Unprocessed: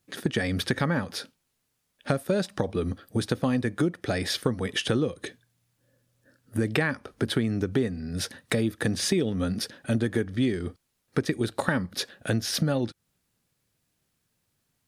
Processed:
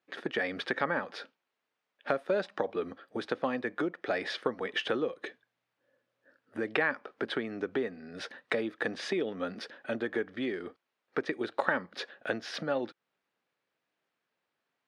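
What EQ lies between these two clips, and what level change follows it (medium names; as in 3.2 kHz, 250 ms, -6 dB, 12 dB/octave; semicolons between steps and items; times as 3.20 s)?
band-pass 450–2500 Hz; 0.0 dB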